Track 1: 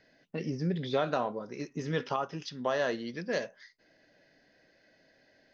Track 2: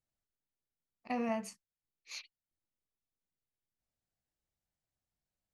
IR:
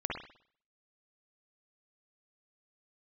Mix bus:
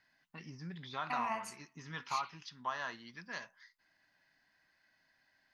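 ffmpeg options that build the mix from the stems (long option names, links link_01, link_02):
-filter_complex "[0:a]lowshelf=frequency=260:gain=9,volume=-8dB[link_01];[1:a]volume=-3dB,asplit=2[link_02][link_03];[link_03]volume=-7dB[link_04];[2:a]atrim=start_sample=2205[link_05];[link_04][link_05]afir=irnorm=-1:irlink=0[link_06];[link_01][link_02][link_06]amix=inputs=3:normalize=0,lowshelf=frequency=710:width_type=q:width=3:gain=-11.5"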